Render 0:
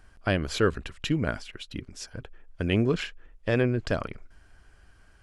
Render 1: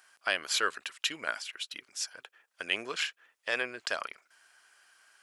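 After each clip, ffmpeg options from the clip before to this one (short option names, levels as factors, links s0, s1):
-af "highpass=990,highshelf=f=4600:g=7.5,volume=1.12"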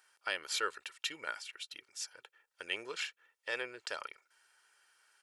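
-af "aecho=1:1:2.2:0.51,volume=0.447"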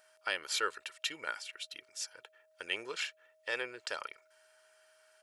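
-af "aeval=exprs='val(0)+0.000398*sin(2*PI*630*n/s)':c=same,volume=1.19"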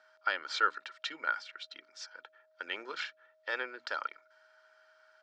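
-af "highpass=f=200:w=0.5412,highpass=f=200:w=1.3066,equalizer=f=260:t=q:w=4:g=4,equalizer=f=430:t=q:w=4:g=-4,equalizer=f=860:t=q:w=4:g=3,equalizer=f=1400:t=q:w=4:g=8,equalizer=f=2700:t=q:w=4:g=-7,lowpass=f=5000:w=0.5412,lowpass=f=5000:w=1.3066,bandreject=f=60:t=h:w=6,bandreject=f=120:t=h:w=6,bandreject=f=180:t=h:w=6,bandreject=f=240:t=h:w=6,bandreject=f=300:t=h:w=6"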